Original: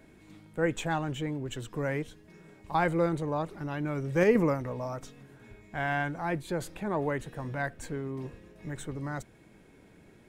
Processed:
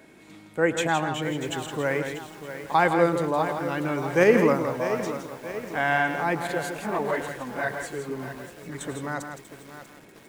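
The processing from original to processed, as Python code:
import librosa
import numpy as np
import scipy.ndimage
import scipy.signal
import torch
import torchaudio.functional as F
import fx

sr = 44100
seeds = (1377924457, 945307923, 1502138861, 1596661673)

y = fx.highpass(x, sr, hz=340.0, slope=6)
y = fx.echo_multitap(y, sr, ms=(106, 164), db=(-15.0, -7.5))
y = fx.chorus_voices(y, sr, voices=2, hz=1.2, base_ms=22, depth_ms=3.0, mix_pct=70, at=(6.47, 8.81))
y = fx.echo_crushed(y, sr, ms=640, feedback_pct=55, bits=8, wet_db=-11.0)
y = F.gain(torch.from_numpy(y), 7.5).numpy()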